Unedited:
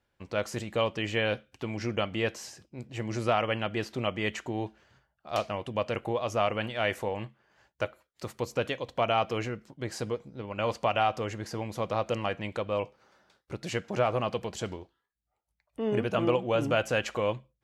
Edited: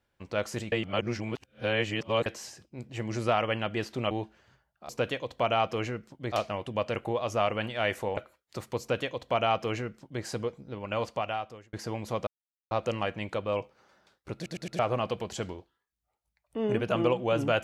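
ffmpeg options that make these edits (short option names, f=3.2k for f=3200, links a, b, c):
-filter_complex "[0:a]asplit=13[a][b][c][d][e][f][g][h][i][j][k][l][m];[a]atrim=end=0.722[n];[b]atrim=start=0.718:end=2.262,asetpts=PTS-STARTPTS,areverse[o];[c]atrim=start=2.258:end=4.112[p];[d]atrim=start=4.538:end=5.322[q];[e]atrim=start=8.468:end=9.902[r];[f]atrim=start=5.318:end=7.172[s];[g]atrim=start=7.838:end=11.4,asetpts=PTS-STARTPTS,afade=t=out:st=2.692:d=0.87[t];[h]atrim=start=11.4:end=11.94,asetpts=PTS-STARTPTS,afade=t=in:d=0.004:c=hsin,afade=t=out:st=0.536:d=0.004:c=hsin,apad=pad_dur=0.44[u];[i]atrim=start=11.94:end=13.692,asetpts=PTS-STARTPTS,afade=t=in:d=0.004:c=hsin[v];[j]atrim=start=13.578:end=13.692[w];[k]atrim=start=13.578:end=13.692[x];[l]atrim=start=13.578:end=13.692[y];[m]atrim=start=14.018[z];[n][o]acrossfade=d=0.004:c1=hsin:c2=hsin[aa];[aa][p]acrossfade=d=0.004:c1=hsin:c2=hsin[ab];[ab][q]acrossfade=d=0.004:c1=hsin:c2=hsin[ac];[ac][r]acrossfade=d=0.004:c1=hsin:c2=hsin[ad];[ad][s]acrossfade=d=0.004:c1=hsin:c2=hsin[ae];[t][u][v]concat=n=3:v=0:a=1[af];[ae][af]acrossfade=d=0.004:c1=hsin:c2=hsin[ag];[ag][w]acrossfade=d=0.004:c1=hsin:c2=hsin[ah];[ah][x]acrossfade=d=0.004:c1=hsin:c2=hsin[ai];[ai][y]acrossfade=d=0.004:c1=hsin:c2=hsin[aj];[aj][z]acrossfade=d=0.004:c1=hsin:c2=hsin"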